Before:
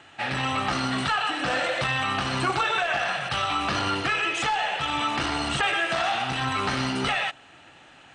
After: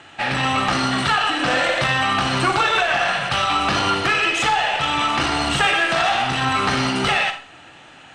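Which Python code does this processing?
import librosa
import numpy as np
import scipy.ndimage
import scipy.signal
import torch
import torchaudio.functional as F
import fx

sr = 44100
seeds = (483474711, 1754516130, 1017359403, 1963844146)

y = fx.cheby_harmonics(x, sr, harmonics=(2, 4), levels_db=(-20, -20), full_scale_db=-12.5)
y = fx.rev_schroeder(y, sr, rt60_s=0.37, comb_ms=38, drr_db=8.0)
y = F.gain(torch.from_numpy(y), 6.0).numpy()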